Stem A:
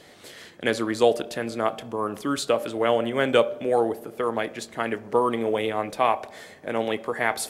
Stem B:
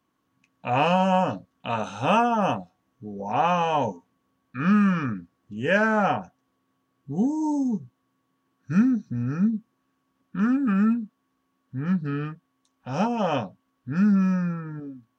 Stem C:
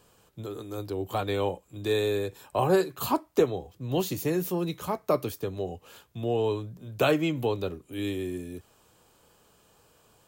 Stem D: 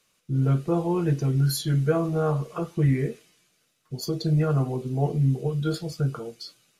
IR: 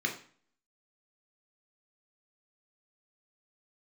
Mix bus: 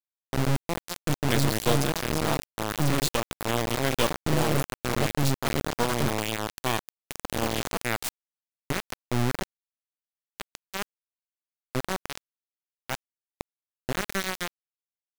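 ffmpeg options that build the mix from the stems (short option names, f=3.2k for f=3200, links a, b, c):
-filter_complex "[0:a]bass=f=250:g=10,treble=f=4k:g=14,acrossover=split=7000[a][b];[b]acompressor=threshold=-40dB:ratio=4:attack=1:release=60[c];[a][c]amix=inputs=2:normalize=0,lowshelf=f=410:g=-4,adelay=650,volume=-4dB[d];[1:a]equalizer=f=230:w=2.2:g=-12.5,acompressor=threshold=-26dB:ratio=8,asoftclip=type=tanh:threshold=-31.5dB,volume=3dB,asplit=2[e][f];[f]volume=-20.5dB[g];[2:a]highpass=110,bandreject=f=60:t=h:w=6,bandreject=f=120:t=h:w=6,bandreject=f=180:t=h:w=6,bandreject=f=240:t=h:w=6,bandreject=f=300:t=h:w=6,adelay=350,volume=-15.5dB[h];[3:a]acompressor=mode=upward:threshold=-33dB:ratio=2.5,volume=-7.5dB,asplit=3[i][j][k];[j]volume=-21dB[l];[k]apad=whole_len=669516[m];[e][m]sidechaincompress=threshold=-47dB:ratio=8:attack=16:release=631[n];[4:a]atrim=start_sample=2205[o];[g][l]amix=inputs=2:normalize=0[p];[p][o]afir=irnorm=-1:irlink=0[q];[d][n][h][i][q]amix=inputs=5:normalize=0,lowshelf=f=140:g=11.5,aeval=exprs='max(val(0),0)':c=same,acrusher=bits=3:mix=0:aa=0.000001"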